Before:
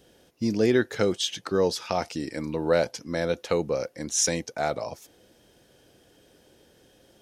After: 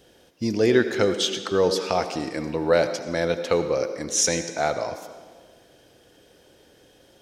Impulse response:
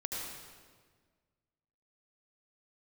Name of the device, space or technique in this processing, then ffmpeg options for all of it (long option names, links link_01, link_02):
filtered reverb send: -filter_complex "[0:a]asplit=2[link_01][link_02];[link_02]highpass=frequency=190:width=0.5412,highpass=frequency=190:width=1.3066,lowpass=7500[link_03];[1:a]atrim=start_sample=2205[link_04];[link_03][link_04]afir=irnorm=-1:irlink=0,volume=-8dB[link_05];[link_01][link_05]amix=inputs=2:normalize=0,volume=1.5dB"